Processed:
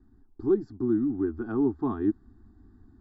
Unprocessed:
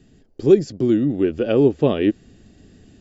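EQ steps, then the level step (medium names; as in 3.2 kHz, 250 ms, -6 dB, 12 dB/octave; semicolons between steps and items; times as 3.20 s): distance through air 470 m; static phaser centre 590 Hz, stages 6; static phaser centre 1.2 kHz, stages 4; 0.0 dB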